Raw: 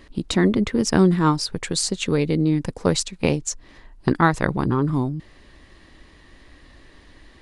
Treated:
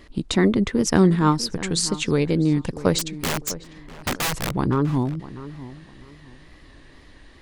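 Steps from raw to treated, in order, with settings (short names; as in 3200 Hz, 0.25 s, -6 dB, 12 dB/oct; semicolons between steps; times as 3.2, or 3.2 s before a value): 2.99–4.52 wrapped overs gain 18.5 dB; wow and flutter 62 cents; darkening echo 0.649 s, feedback 27%, low-pass 2100 Hz, level -15.5 dB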